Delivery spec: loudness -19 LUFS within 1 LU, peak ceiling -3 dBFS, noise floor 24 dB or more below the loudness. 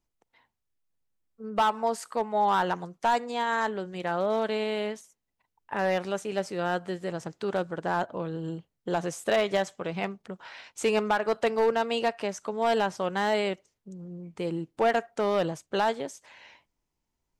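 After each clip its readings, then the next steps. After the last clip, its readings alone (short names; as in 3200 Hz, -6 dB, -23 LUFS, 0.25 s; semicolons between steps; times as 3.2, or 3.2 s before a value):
clipped 0.5%; flat tops at -17.5 dBFS; loudness -28.5 LUFS; peak -17.5 dBFS; loudness target -19.0 LUFS
-> clip repair -17.5 dBFS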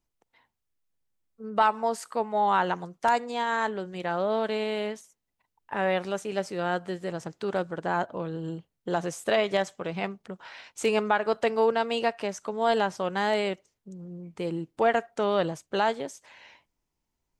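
clipped 0.0%; loudness -28.0 LUFS; peak -10.0 dBFS; loudness target -19.0 LUFS
-> gain +9 dB; limiter -3 dBFS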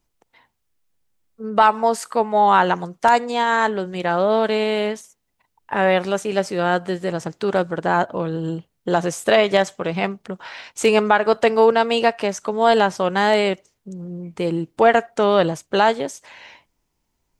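loudness -19.5 LUFS; peak -3.0 dBFS; noise floor -73 dBFS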